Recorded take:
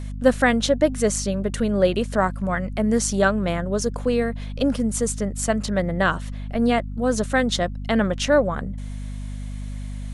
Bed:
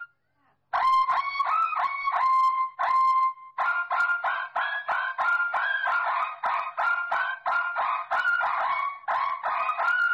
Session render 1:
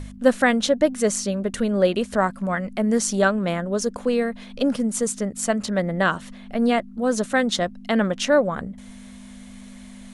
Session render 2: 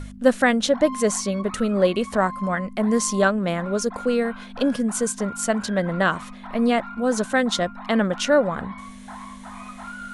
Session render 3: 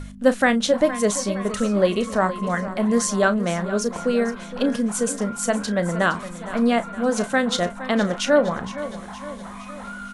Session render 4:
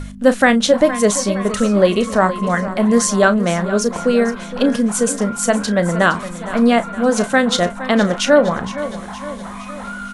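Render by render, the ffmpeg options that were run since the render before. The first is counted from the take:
-af "bandreject=f=50:t=h:w=4,bandreject=f=100:t=h:w=4,bandreject=f=150:t=h:w=4"
-filter_complex "[1:a]volume=-13.5dB[a];[0:a][a]amix=inputs=2:normalize=0"
-filter_complex "[0:a]asplit=2[a][b];[b]adelay=34,volume=-13dB[c];[a][c]amix=inputs=2:normalize=0,aecho=1:1:465|930|1395|1860|2325:0.2|0.108|0.0582|0.0314|0.017"
-af "volume=6dB,alimiter=limit=-1dB:level=0:latency=1"

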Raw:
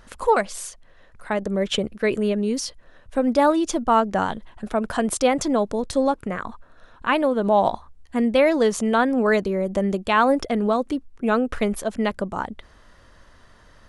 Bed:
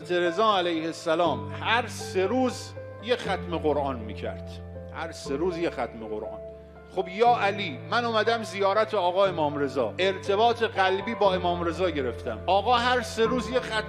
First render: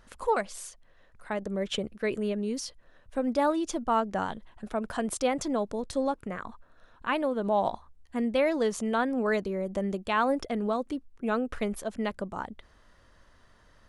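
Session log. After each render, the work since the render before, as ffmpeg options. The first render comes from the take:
-af "volume=-8dB"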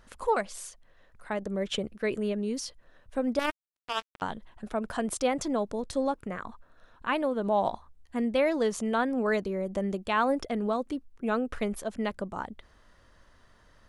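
-filter_complex "[0:a]asettb=1/sr,asplit=3[a][b][c];[a]atrim=end=3.394[d];[b]atrim=start=3.39:end=4.22,asetpts=PTS-STARTPTS,afade=t=in:d=0.004:c=qsin,afade=t=out:st=0.826:d=0.004:c=qsin,acrusher=bits=2:mix=0:aa=0.5[e];[c]atrim=start=4.216[f];[d][e]acrossfade=d=0.004:c1=hsin:c2=qsin[g];[g][f]acrossfade=d=0.004:c1=qsin:c2=hsin"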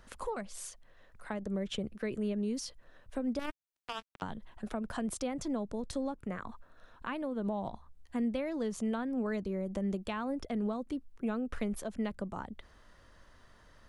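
-filter_complex "[0:a]acrossover=split=240[a][b];[b]acompressor=threshold=-38dB:ratio=4[c];[a][c]amix=inputs=2:normalize=0"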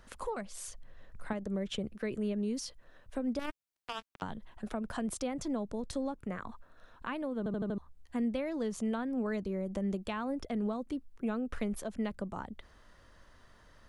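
-filter_complex "[0:a]asettb=1/sr,asplit=3[a][b][c];[a]atrim=end=0.684[d];[b]atrim=start=0.68:end=1.33,asetpts=PTS-STARTPTS,afade=t=in:d=0.004:c=qsin,afade=t=out:st=0.646:d=0.004:c=qsin,lowshelf=f=250:g=10.5[e];[c]atrim=start=1.326[f];[d][e]acrossfade=d=0.004:c1=hsin:c2=qsin[g];[g][f]acrossfade=d=0.004:c1=qsin:c2=hsin,asplit=6[h][i][j][k][l][m];[h]atrim=end=7.462[n];[i]atrim=start=7.378:end=7.462[o];[j]atrim=start=7.378:end=7.462[p];[k]atrim=start=7.378:end=7.462[q];[l]atrim=start=7.378:end=7.462[r];[m]atrim=start=7.778[s];[n][o]acrossfade=d=0.004:c1=hsin:c2=hsin[t];[t][p]acrossfade=d=0.004:c1=hsin:c2=hsin[u];[u][q]acrossfade=d=0.004:c1=hsin:c2=hsin[v];[v][r]acrossfade=d=0.004:c1=hsin:c2=hsin[w];[w][s]acrossfade=d=0.004:c1=hsin:c2=hsin"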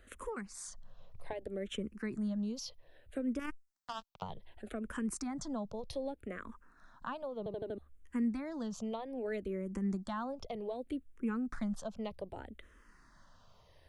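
-filter_complex "[0:a]asplit=2[a][b];[b]afreqshift=-0.64[c];[a][c]amix=inputs=2:normalize=1"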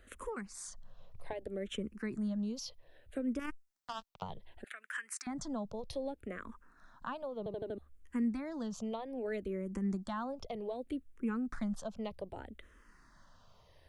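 -filter_complex "[0:a]asettb=1/sr,asplit=3[a][b][c];[a]atrim=end=4.644[d];[b]atrim=start=4.64:end=5.27,asetpts=PTS-STARTPTS,afade=t=in:d=0.004:c=qsin,afade=t=out:st=0.626:d=0.004:c=qsin,highpass=f=1.8k:t=q:w=3.2[e];[c]atrim=start=5.266[f];[d][e]acrossfade=d=0.004:c1=hsin:c2=qsin[g];[g][f]acrossfade=d=0.004:c1=qsin:c2=hsin"

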